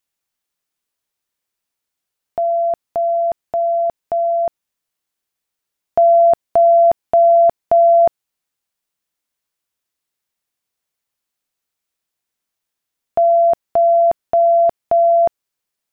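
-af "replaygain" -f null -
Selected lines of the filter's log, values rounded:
track_gain = -4.6 dB
track_peak = 0.318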